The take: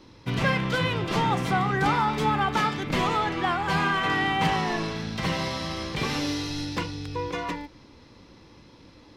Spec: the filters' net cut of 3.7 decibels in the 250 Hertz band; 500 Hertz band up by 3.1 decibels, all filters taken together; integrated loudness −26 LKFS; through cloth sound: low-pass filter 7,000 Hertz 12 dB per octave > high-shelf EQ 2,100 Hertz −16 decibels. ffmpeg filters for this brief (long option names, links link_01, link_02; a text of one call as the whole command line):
ffmpeg -i in.wav -af "lowpass=7000,equalizer=frequency=250:width_type=o:gain=-7.5,equalizer=frequency=500:width_type=o:gain=7,highshelf=frequency=2100:gain=-16,volume=2dB" out.wav